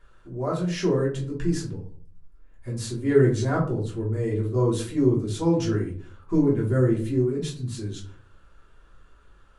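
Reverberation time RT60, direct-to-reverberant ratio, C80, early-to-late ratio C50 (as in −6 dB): 0.50 s, −5.0 dB, 13.5 dB, 8.0 dB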